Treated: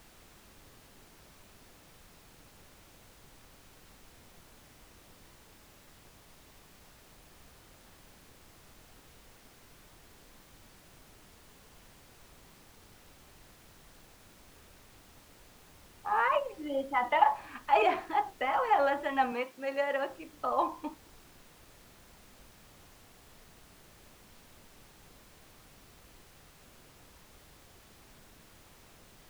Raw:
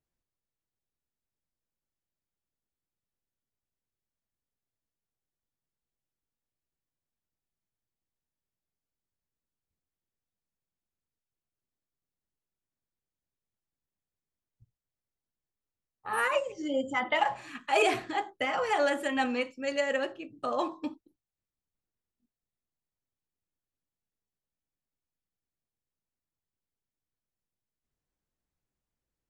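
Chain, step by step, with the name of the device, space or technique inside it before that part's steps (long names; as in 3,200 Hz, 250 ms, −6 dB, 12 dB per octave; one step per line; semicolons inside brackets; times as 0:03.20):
horn gramophone (band-pass filter 240–3,100 Hz; parametric band 930 Hz +10 dB; tape wow and flutter; pink noise bed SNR 19 dB)
0:19.32–0:20.10: high-pass filter 180 Hz 12 dB per octave
level −4 dB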